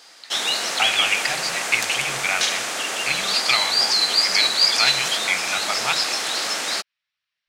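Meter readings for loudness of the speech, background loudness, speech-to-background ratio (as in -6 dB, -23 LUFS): -24.0 LUFS, -20.0 LUFS, -4.0 dB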